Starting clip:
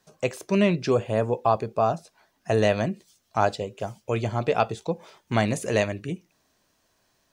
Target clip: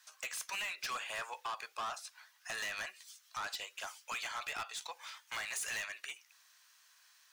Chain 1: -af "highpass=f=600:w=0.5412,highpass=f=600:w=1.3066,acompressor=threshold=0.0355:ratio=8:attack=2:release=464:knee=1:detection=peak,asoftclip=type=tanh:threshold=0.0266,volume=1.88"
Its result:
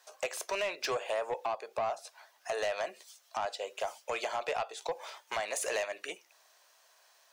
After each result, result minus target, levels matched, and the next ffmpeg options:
500 Hz band +14.0 dB; saturation: distortion -8 dB
-af "highpass=f=1200:w=0.5412,highpass=f=1200:w=1.3066,acompressor=threshold=0.0355:ratio=8:attack=2:release=464:knee=1:detection=peak,asoftclip=type=tanh:threshold=0.0266,volume=1.88"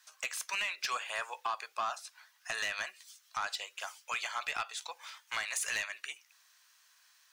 saturation: distortion -7 dB
-af "highpass=f=1200:w=0.5412,highpass=f=1200:w=1.3066,acompressor=threshold=0.0355:ratio=8:attack=2:release=464:knee=1:detection=peak,asoftclip=type=tanh:threshold=0.00944,volume=1.88"

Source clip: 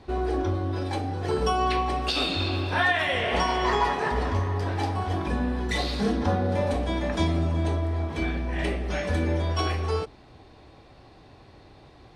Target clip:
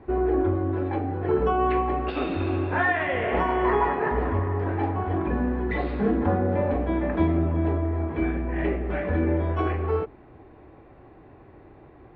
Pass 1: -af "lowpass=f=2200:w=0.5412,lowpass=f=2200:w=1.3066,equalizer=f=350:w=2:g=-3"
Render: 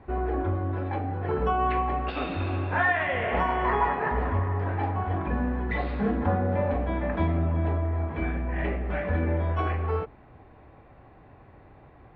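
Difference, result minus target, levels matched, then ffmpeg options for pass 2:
250 Hz band -3.0 dB
-af "lowpass=f=2200:w=0.5412,lowpass=f=2200:w=1.3066,equalizer=f=350:w=2:g=6"

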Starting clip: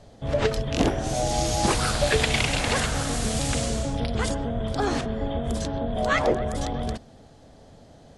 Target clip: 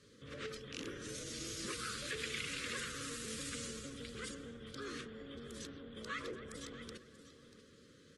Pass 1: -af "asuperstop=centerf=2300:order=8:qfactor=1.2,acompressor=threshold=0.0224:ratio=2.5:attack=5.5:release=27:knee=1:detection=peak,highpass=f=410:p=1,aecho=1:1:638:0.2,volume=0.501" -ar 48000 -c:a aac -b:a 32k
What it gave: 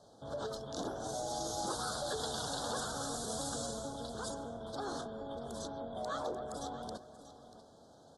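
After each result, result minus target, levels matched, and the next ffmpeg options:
2 kHz band -8.5 dB; compression: peak gain reduction -4 dB
-af "asuperstop=centerf=760:order=8:qfactor=1.2,acompressor=threshold=0.0224:ratio=2.5:attack=5.5:release=27:knee=1:detection=peak,highpass=f=410:p=1,aecho=1:1:638:0.2,volume=0.501" -ar 48000 -c:a aac -b:a 32k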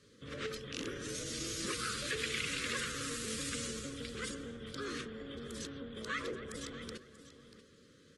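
compression: peak gain reduction -4 dB
-af "asuperstop=centerf=760:order=8:qfactor=1.2,acompressor=threshold=0.01:ratio=2.5:attack=5.5:release=27:knee=1:detection=peak,highpass=f=410:p=1,aecho=1:1:638:0.2,volume=0.501" -ar 48000 -c:a aac -b:a 32k

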